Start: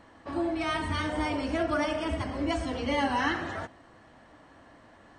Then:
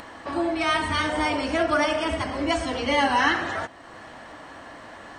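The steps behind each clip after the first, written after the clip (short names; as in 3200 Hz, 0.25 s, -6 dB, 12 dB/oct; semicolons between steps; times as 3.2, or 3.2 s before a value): in parallel at -1 dB: upward compressor, threshold -33 dBFS; on the sum: low shelf 380 Hz -9 dB; gain +3 dB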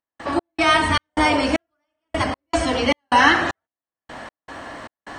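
step gate ".x.xx.xx.." 77 bpm -60 dB; gain +7 dB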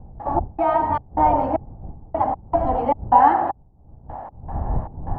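wind noise 93 Hz -25 dBFS; synth low-pass 820 Hz, resonance Q 7.1; gain -6.5 dB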